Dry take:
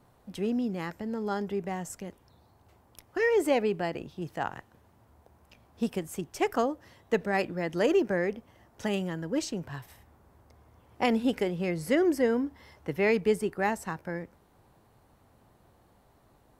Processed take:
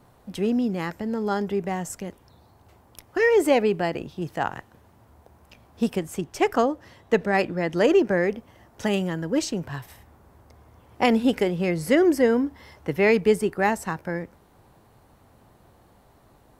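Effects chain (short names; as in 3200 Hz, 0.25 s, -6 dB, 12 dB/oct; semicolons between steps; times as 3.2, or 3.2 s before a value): 5.95–8.17 high shelf 9600 Hz -7 dB; gain +6 dB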